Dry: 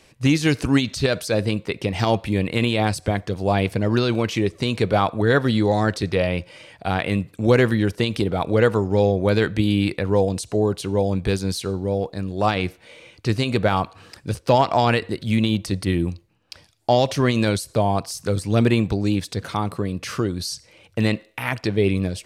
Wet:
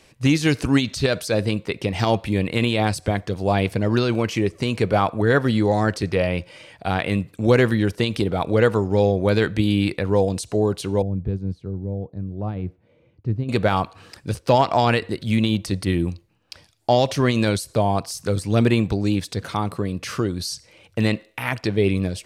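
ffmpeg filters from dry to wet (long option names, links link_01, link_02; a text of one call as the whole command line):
ffmpeg -i in.wav -filter_complex "[0:a]asettb=1/sr,asplit=3[link_01][link_02][link_03];[link_01]atrim=end=4.034[link_04];[link_02]atrim=start=4.03:end=6.35,asetpts=PTS-STARTPTS,afade=type=in:duration=0.004:curve=qsin,afade=type=out:start_time=2.316:duration=0.004:curve=qsin,equalizer=frequency=3700:width_type=o:width=0.25:gain=-7[link_05];[link_03]atrim=start=6.346[link_06];[link_04][link_05]acrossfade=duration=0.004:curve1=hsin:curve2=qsin[link_07];[link_07][link_06]acrossfade=duration=0.004:curve1=qsin:curve2=hsin,asettb=1/sr,asplit=3[link_08][link_09][link_10];[link_08]atrim=end=11.024[link_11];[link_09]atrim=start=11.02:end=13.49,asetpts=PTS-STARTPTS,afade=type=in:duration=0.004:curve=qsin,afade=type=out:start_time=2.466:duration=0.004:curve=qsin,bandpass=frequency=100:width_type=q:width=0.66[link_12];[link_10]atrim=start=13.486[link_13];[link_11][link_12]acrossfade=duration=0.004:curve1=hsin:curve2=qsin[link_14];[link_14][link_13]acrossfade=duration=0.004:curve1=qsin:curve2=hsin" out.wav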